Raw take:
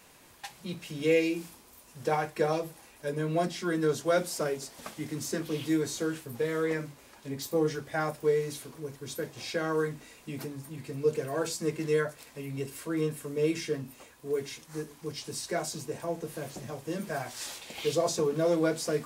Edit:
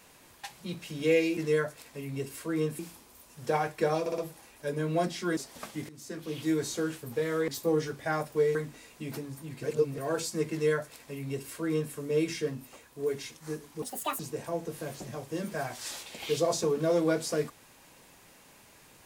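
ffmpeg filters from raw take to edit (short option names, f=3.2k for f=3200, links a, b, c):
-filter_complex "[0:a]asplit=14[a][b][c][d][e][f][g][h][i][j][k][l][m][n];[a]atrim=end=1.372[o];[b]atrim=start=11.778:end=13.202[p];[c]atrim=start=1.368:end=2.642[q];[d]atrim=start=2.578:end=2.642[r];[e]atrim=start=2.578:end=2.642[s];[f]atrim=start=2.578:end=3.772[t];[g]atrim=start=4.598:end=5.12,asetpts=PTS-STARTPTS,afade=t=out:st=0.518:d=0.004:c=hsin:silence=0.11885[u];[h]atrim=start=5.12:end=6.712,asetpts=PTS-STARTPTS,afade=t=in:d=0.69:silence=0.11885[v];[i]atrim=start=7.358:end=8.432[w];[j]atrim=start=9.818:end=10.902[x];[k]atrim=start=10.898:end=11.252,asetpts=PTS-STARTPTS,areverse[y];[l]atrim=start=11.248:end=15.094[z];[m]atrim=start=15.09:end=15.75,asetpts=PTS-STARTPTS,asetrate=77616,aresample=44100[aa];[n]atrim=start=15.746[ab];[o][p]acrossfade=d=0.004:c1=hsin:c2=hsin[ac];[ac][q]acrossfade=d=0.004:c1=hsin:c2=hsin[ad];[ad][r]acrossfade=d=0.004:c1=hsin:c2=hsin[ae];[ae][s]acrossfade=d=0.004:c1=hsin:c2=hsin[af];[af][t]acrossfade=d=0.004:c1=hsin:c2=hsin[ag];[u][v]concat=n=2:v=0:a=1[ah];[ag][ah]acrossfade=d=0.004:c1=hsin:c2=hsin[ai];[ai][w]acrossfade=d=0.004:c1=hsin:c2=hsin[aj];[aj][x]acrossfade=d=0.004:c1=hsin:c2=hsin[ak];[ak][y]acrossfade=d=0.004:c1=hsin:c2=hsin[al];[al][z]acrossfade=d=0.004:c1=hsin:c2=hsin[am];[am][aa]acrossfade=d=0.004:c1=hsin:c2=hsin[an];[an][ab]acrossfade=d=0.004:c1=hsin:c2=hsin"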